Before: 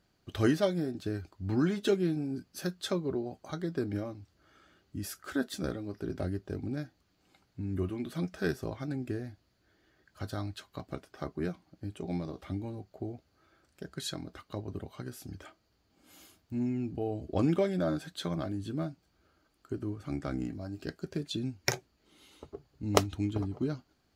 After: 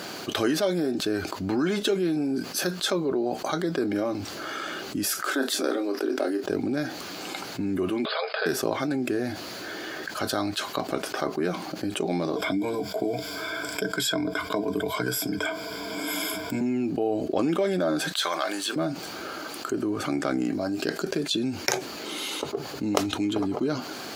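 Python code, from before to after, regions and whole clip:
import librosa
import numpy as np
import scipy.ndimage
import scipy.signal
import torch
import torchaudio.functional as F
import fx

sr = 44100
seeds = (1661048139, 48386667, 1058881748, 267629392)

y = fx.chain(x, sr, fx.steep_highpass(hz=250.0, slope=48),
    fx.doubler(ms=30.0, db=-10), at=(5.21, 6.44))
y = fx.chain(y, sr, fx.brickwall_bandpass(low_hz=410.0, high_hz=5100.0),
    fx.band_squash(depth_pct=40), at=(8.05, 8.46))
y = fx.chain(y, sr, fx.ripple_eq(per_octave=1.7, db=16),
    fx.band_squash(depth_pct=40), at=(12.36, 16.61))
y = fx.chain(y, sr, fx.highpass(hz=970.0, slope=12),
    fx.leveller(passes=1), at=(18.12, 18.76))
y = scipy.signal.sosfilt(scipy.signal.butter(2, 300.0, 'highpass', fs=sr, output='sos'), y)
y = fx.notch(y, sr, hz=1900.0, q=20.0)
y = fx.env_flatten(y, sr, amount_pct=70)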